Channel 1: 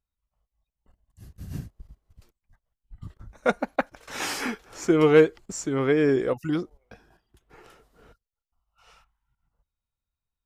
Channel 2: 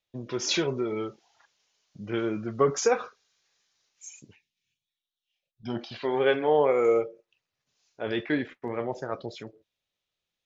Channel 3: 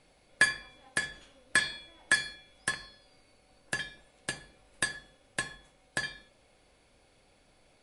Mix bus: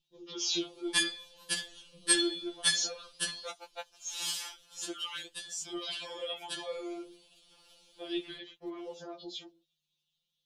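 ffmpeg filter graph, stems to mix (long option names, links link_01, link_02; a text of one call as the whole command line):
ffmpeg -i stem1.wav -i stem2.wav -i stem3.wav -filter_complex "[0:a]highpass=650,adynamicequalizer=threshold=0.00224:dfrequency=9300:dqfactor=0.94:tfrequency=9300:tqfactor=0.94:attack=5:release=100:ratio=0.375:range=2.5:mode=boostabove:tftype=bell,volume=-8dB,asplit=2[link_01][link_02];[1:a]alimiter=limit=-21.5dB:level=0:latency=1:release=126,aeval=exprs='val(0)+0.000447*(sin(2*PI*50*n/s)+sin(2*PI*2*50*n/s)/2+sin(2*PI*3*50*n/s)/3+sin(2*PI*4*50*n/s)/4+sin(2*PI*5*50*n/s)/5)':channel_layout=same,volume=-2.5dB[link_03];[2:a]acrossover=split=430[link_04][link_05];[link_04]acompressor=threshold=-35dB:ratio=10[link_06];[link_06][link_05]amix=inputs=2:normalize=0,adelay=550,volume=2dB[link_07];[link_02]apad=whole_len=369425[link_08];[link_07][link_08]sidechaincompress=threshold=-49dB:ratio=12:attack=29:release=246[link_09];[link_01][link_03][link_09]amix=inputs=3:normalize=0,highshelf=frequency=2500:width_type=q:width=3:gain=8,flanger=delay=0:depth=9.5:regen=-43:speed=0.7:shape=sinusoidal,afftfilt=real='re*2.83*eq(mod(b,8),0)':imag='im*2.83*eq(mod(b,8),0)':win_size=2048:overlap=0.75" out.wav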